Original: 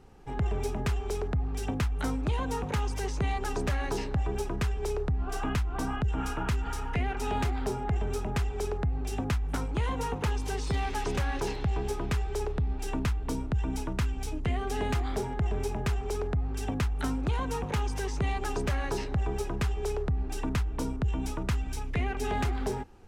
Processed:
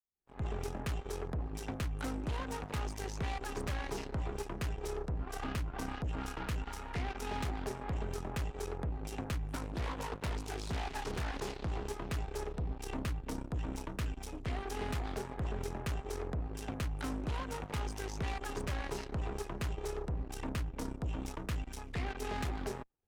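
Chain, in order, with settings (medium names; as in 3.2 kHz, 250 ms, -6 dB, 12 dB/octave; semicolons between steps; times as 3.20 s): fade-in on the opening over 0.53 s; Chebyshev shaper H 4 -18 dB, 5 -23 dB, 7 -14 dB, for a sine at -20.5 dBFS; 9.62–11.69 s: loudspeaker Doppler distortion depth 0.68 ms; trim -8.5 dB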